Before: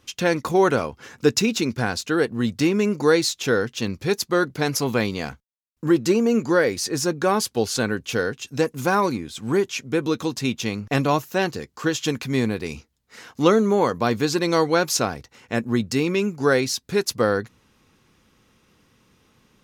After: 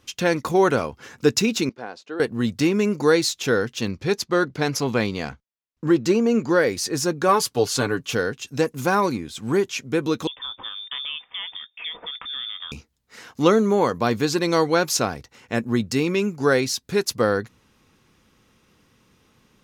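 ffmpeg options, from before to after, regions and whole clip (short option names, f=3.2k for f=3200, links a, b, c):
-filter_complex "[0:a]asettb=1/sr,asplit=3[a][b][c];[a]atrim=end=1.694[d];[b]atrim=start=1.69:end=2.2,asetpts=PTS-STARTPTS,afade=t=in:d=0.004:c=qsin,afade=t=out:st=0.506:d=0.004:c=qsin,highpass=520,lowpass=2.4k,equalizer=f=1.7k:t=o:w=2.4:g=-12[e];[c]atrim=start=2.196[f];[d][e]acrossfade=d=0.004:c1=hsin:c2=qsin[g];[g][f]acrossfade=d=0.004:c1=qsin:c2=hsin,asettb=1/sr,asplit=3[h][i][j];[h]atrim=end=3.914[k];[i]atrim=start=3.91:end=6.58,asetpts=PTS-STARTPTS,afade=t=in:d=0.004:c=qsin,afade=t=out:st=2.666:d=0.004:c=qsin,equalizer=f=9k:t=o:w=0.36:g=-2.5,adynamicsmooth=sensitivity=7:basefreq=7.1k[l];[j]atrim=start=6.576[m];[k][l]acrossfade=d=0.004:c1=hsin:c2=qsin[n];[n][m]acrossfade=d=0.004:c1=qsin:c2=hsin,asettb=1/sr,asplit=3[o][p][q];[o]atrim=end=7.284[r];[p]atrim=start=7.28:end=8.15,asetpts=PTS-STARTPTS,afade=t=in:d=0.004:c=qsin,afade=t=out:st=0.866:d=0.004:c=qsin,equalizer=f=1.1k:w=4.7:g=6,aecho=1:1:6.9:0.59,atrim=end_sample=38367[s];[q]atrim=start=8.146[t];[r][s]acrossfade=d=0.004:c1=hsin:c2=qsin[u];[u][t]acrossfade=d=0.004:c1=qsin:c2=hsin,asettb=1/sr,asplit=3[v][w][x];[v]atrim=end=10.274[y];[w]atrim=start=10.27:end=12.72,asetpts=PTS-STARTPTS,afade=t=in:d=0.004:c=qsin,afade=t=out:st=2.446:d=0.004:c=qsin,acompressor=threshold=-31dB:ratio=3:attack=3.2:release=140:knee=1:detection=peak,lowpass=f=3.1k:t=q:w=0.5098,lowpass=f=3.1k:t=q:w=0.6013,lowpass=f=3.1k:t=q:w=0.9,lowpass=f=3.1k:t=q:w=2.563,afreqshift=-3700[z];[x]atrim=start=12.716[aa];[y][z]acrossfade=d=0.004:c1=hsin:c2=qsin[ab];[ab][aa]acrossfade=d=0.004:c1=qsin:c2=hsin"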